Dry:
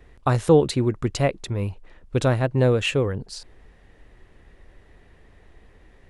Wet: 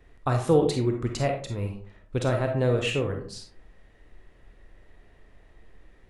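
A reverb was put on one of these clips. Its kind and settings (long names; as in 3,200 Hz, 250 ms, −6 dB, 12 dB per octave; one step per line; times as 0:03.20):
comb and all-pass reverb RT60 0.5 s, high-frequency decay 0.45×, pre-delay 5 ms, DRR 3 dB
level −5.5 dB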